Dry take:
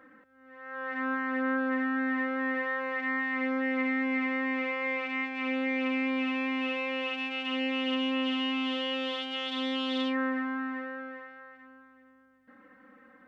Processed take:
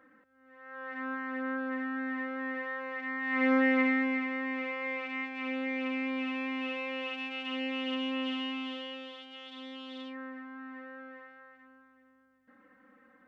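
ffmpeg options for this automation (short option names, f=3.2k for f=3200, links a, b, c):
-af "volume=13.5dB,afade=t=in:st=3.2:d=0.33:silence=0.281838,afade=t=out:st=3.53:d=0.72:silence=0.334965,afade=t=out:st=8.3:d=0.82:silence=0.354813,afade=t=in:st=10.5:d=0.75:silence=0.398107"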